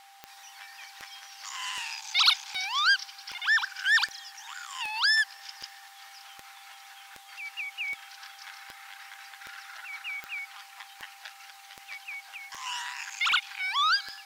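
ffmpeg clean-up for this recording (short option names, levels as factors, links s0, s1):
-af "adeclick=t=4,bandreject=f=790:w=30"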